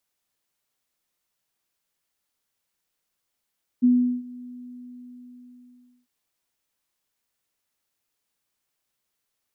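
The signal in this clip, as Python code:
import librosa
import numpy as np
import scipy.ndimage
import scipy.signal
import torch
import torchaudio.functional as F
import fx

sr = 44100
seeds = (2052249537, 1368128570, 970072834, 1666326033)

y = fx.adsr_tone(sr, wave='sine', hz=247.0, attack_ms=23.0, decay_ms=381.0, sustain_db=-23.0, held_s=0.61, release_ms=1640.0, level_db=-13.0)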